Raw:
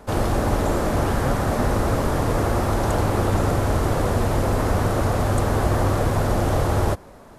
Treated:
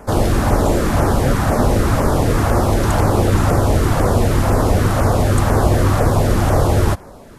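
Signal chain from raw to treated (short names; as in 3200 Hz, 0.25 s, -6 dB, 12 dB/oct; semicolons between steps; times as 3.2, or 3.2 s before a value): LFO notch saw down 2 Hz 330–4200 Hz; gain +6.5 dB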